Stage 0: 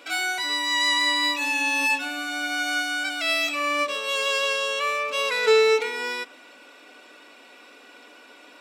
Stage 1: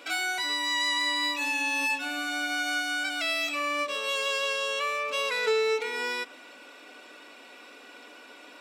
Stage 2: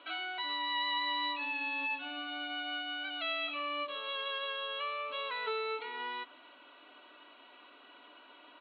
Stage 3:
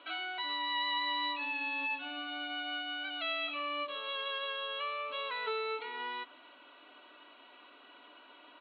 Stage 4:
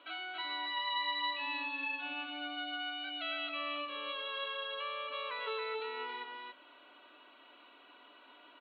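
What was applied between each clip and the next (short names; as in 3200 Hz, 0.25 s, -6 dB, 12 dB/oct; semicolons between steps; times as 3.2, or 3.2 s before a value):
compressor 2:1, threshold -29 dBFS, peak gain reduction 8.5 dB
rippled Chebyshev low-pass 4300 Hz, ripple 9 dB; comb 3.1 ms, depth 43%; gain -3 dB
nothing audible
echo 0.277 s -4 dB; gain -3.5 dB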